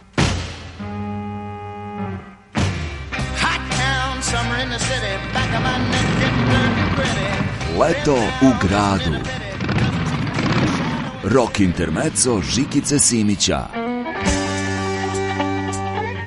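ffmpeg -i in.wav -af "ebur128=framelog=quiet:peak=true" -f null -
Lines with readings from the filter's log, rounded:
Integrated loudness:
  I:         -19.4 LUFS
  Threshold: -29.6 LUFS
Loudness range:
  LRA:         5.2 LU
  Threshold: -39.2 LUFS
  LRA low:   -22.9 LUFS
  LRA high:  -17.6 LUFS
True peak:
  Peak:       -1.2 dBFS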